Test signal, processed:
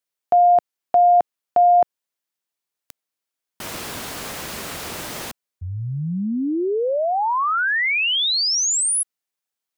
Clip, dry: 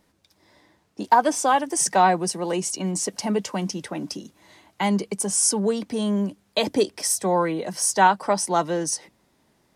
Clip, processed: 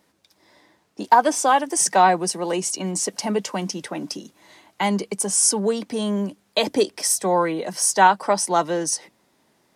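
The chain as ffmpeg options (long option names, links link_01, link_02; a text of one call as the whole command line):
ffmpeg -i in.wav -af "highpass=frequency=220:poles=1,volume=2.5dB" out.wav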